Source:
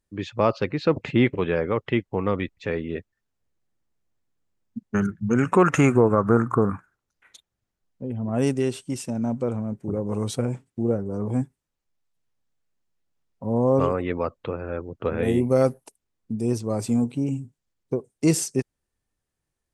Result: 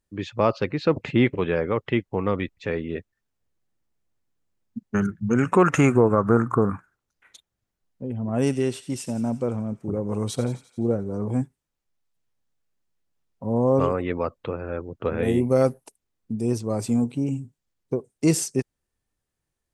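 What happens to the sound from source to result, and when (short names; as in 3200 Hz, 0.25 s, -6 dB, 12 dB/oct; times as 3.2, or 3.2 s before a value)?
8.23–11.25 thin delay 87 ms, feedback 62%, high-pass 2100 Hz, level -12 dB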